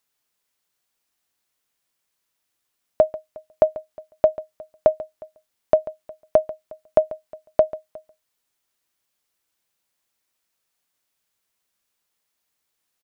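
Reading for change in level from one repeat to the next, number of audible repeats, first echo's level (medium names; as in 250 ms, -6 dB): no regular repeats, 1, -17.0 dB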